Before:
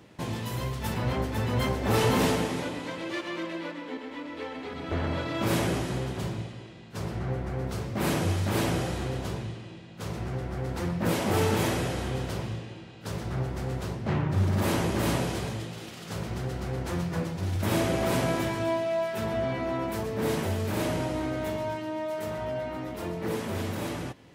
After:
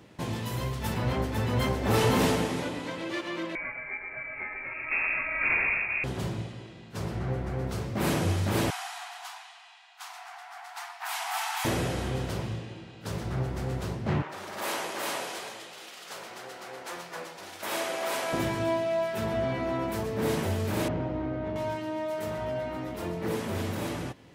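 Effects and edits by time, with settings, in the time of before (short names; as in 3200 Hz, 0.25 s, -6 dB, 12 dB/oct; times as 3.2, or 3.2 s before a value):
3.55–6.04 inverted band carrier 2600 Hz
8.7–11.65 brick-wall FIR high-pass 670 Hz
14.22–18.33 HPF 640 Hz
20.88–21.56 tape spacing loss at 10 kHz 38 dB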